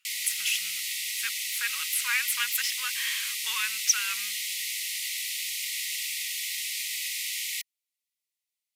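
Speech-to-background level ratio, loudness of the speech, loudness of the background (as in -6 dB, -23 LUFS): 0.5 dB, -29.5 LUFS, -30.0 LUFS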